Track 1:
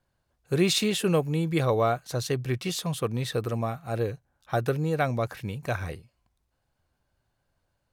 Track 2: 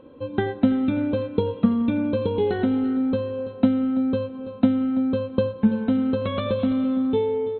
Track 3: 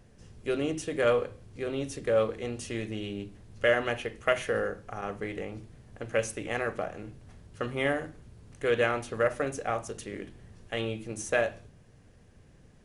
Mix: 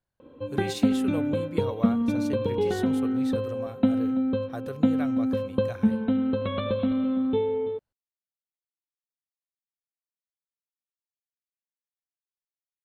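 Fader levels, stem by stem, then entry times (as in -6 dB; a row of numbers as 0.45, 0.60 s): -11.0 dB, -3.0 dB, off; 0.00 s, 0.20 s, off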